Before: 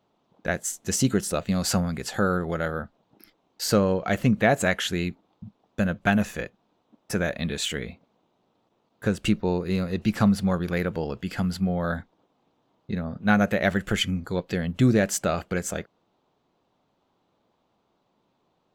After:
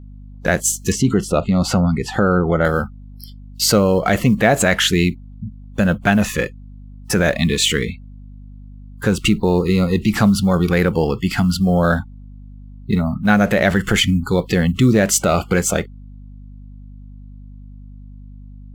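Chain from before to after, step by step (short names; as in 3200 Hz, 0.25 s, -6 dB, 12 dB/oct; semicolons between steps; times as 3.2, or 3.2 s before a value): G.711 law mismatch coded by mu; 0.92–2.65 LPF 1800 Hz 6 dB/oct; spectral noise reduction 29 dB; hum 50 Hz, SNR 22 dB; in parallel at -3 dB: negative-ratio compressor -25 dBFS, ratio -0.5; on the sum: gain +5 dB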